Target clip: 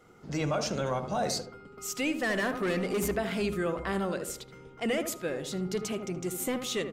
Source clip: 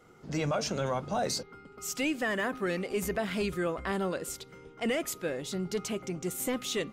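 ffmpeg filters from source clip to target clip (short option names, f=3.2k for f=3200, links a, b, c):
-filter_complex "[0:a]asettb=1/sr,asplit=3[a][b][c];[a]atrim=end=2.234[d];[b]atrim=start=2.23:end=3.15,asetpts=PTS-STARTPTS,afade=t=in:d=0.004:c=qsin,afade=t=out:st=0.916:d=0.004:c=qsin,aeval=exprs='0.0841*(cos(1*acos(clip(val(0)/0.0841,-1,1)))-cos(1*PI/2))+0.0133*(cos(5*acos(clip(val(0)/0.0841,-1,1)))-cos(5*PI/2))':c=same[e];[c]atrim=start=3.146[f];[d][e]acrossfade=d=0.004:c1=hsin:c2=qsin[g];[g][f]acrossfade=d=0.004:c1=qsin:c2=hsin,asplit=2[h][i];[i]adelay=76,lowpass=f=1.2k:p=1,volume=-7dB,asplit=2[j][k];[k]adelay=76,lowpass=f=1.2k:p=1,volume=0.43,asplit=2[l][m];[m]adelay=76,lowpass=f=1.2k:p=1,volume=0.43,asplit=2[n][o];[o]adelay=76,lowpass=f=1.2k:p=1,volume=0.43,asplit=2[p][q];[q]adelay=76,lowpass=f=1.2k:p=1,volume=0.43[r];[h][j][l][n][p][r]amix=inputs=6:normalize=0"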